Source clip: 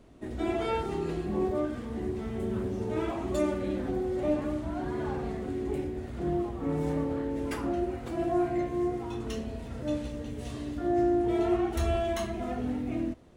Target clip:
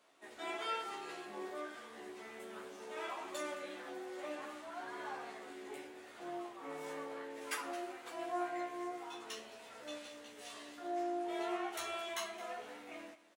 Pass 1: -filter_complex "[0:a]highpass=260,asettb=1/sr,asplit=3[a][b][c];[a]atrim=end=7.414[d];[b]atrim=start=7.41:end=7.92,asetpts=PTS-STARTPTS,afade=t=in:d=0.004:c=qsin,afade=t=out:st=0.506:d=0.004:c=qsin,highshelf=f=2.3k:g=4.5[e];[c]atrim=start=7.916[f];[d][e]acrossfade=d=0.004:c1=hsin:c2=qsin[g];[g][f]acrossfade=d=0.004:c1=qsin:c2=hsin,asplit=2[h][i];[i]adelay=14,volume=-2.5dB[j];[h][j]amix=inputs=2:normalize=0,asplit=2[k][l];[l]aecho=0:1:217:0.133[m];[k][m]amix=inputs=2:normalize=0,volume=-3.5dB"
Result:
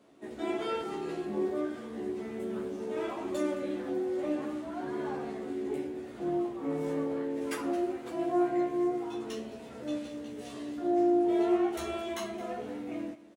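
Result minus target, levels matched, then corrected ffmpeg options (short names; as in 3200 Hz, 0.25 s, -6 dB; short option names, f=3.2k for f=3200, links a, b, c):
1000 Hz band -6.0 dB
-filter_complex "[0:a]highpass=920,asettb=1/sr,asplit=3[a][b][c];[a]atrim=end=7.414[d];[b]atrim=start=7.41:end=7.92,asetpts=PTS-STARTPTS,afade=t=in:d=0.004:c=qsin,afade=t=out:st=0.506:d=0.004:c=qsin,highshelf=f=2.3k:g=4.5[e];[c]atrim=start=7.916[f];[d][e]acrossfade=d=0.004:c1=hsin:c2=qsin[g];[g][f]acrossfade=d=0.004:c1=qsin:c2=hsin,asplit=2[h][i];[i]adelay=14,volume=-2.5dB[j];[h][j]amix=inputs=2:normalize=0,asplit=2[k][l];[l]aecho=0:1:217:0.133[m];[k][m]amix=inputs=2:normalize=0,volume=-3.5dB"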